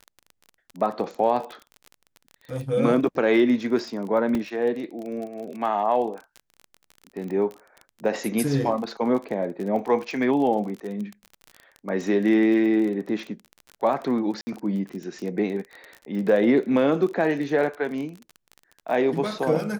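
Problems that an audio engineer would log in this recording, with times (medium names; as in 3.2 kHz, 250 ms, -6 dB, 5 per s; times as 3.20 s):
crackle 28 per s -31 dBFS
4.35 s: dropout 2.3 ms
14.41–14.47 s: dropout 60 ms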